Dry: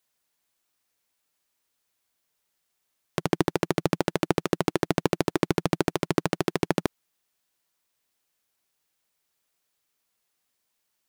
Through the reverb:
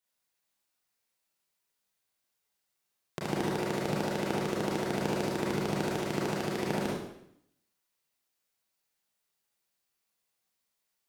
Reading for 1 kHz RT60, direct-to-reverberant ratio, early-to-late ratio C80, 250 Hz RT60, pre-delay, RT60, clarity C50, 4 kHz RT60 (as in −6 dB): 0.70 s, −5.0 dB, 4.5 dB, 0.85 s, 28 ms, 0.75 s, 0.5 dB, 0.70 s